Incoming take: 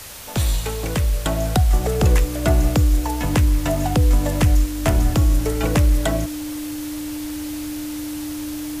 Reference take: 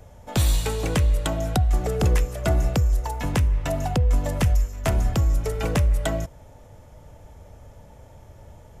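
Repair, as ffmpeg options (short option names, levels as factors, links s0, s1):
-af "bandreject=f=300:w=30,afwtdn=0.016,asetnsamples=n=441:p=0,asendcmd='1.26 volume volume -4dB',volume=1"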